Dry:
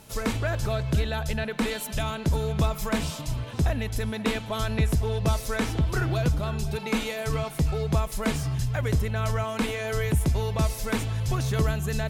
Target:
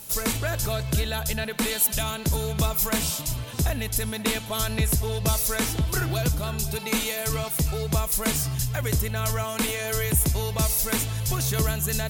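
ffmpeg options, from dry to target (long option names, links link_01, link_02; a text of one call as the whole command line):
ffmpeg -i in.wav -af "aemphasis=mode=production:type=75fm" out.wav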